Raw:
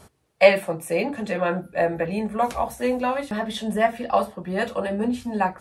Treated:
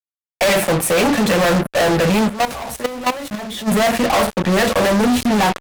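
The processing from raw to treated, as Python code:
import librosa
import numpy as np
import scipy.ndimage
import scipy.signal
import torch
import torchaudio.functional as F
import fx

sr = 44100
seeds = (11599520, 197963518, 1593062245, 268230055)

y = fx.fuzz(x, sr, gain_db=40.0, gate_db=-39.0)
y = fx.level_steps(y, sr, step_db=14, at=(2.28, 3.69), fade=0.02)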